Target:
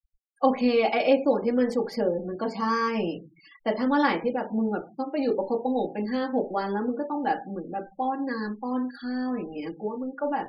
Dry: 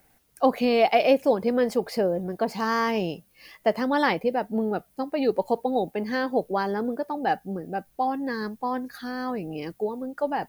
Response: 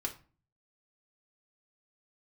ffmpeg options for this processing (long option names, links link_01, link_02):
-filter_complex "[1:a]atrim=start_sample=2205,asetrate=42777,aresample=44100[link_01];[0:a][link_01]afir=irnorm=-1:irlink=0,afftfilt=real='re*gte(hypot(re,im),0.0112)':imag='im*gte(hypot(re,im),0.0112)':win_size=1024:overlap=0.75,volume=-3.5dB"